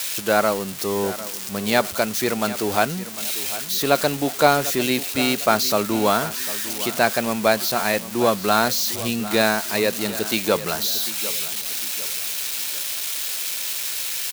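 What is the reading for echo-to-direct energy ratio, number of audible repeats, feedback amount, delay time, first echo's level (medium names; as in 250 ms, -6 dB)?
-14.5 dB, 3, 38%, 750 ms, -15.0 dB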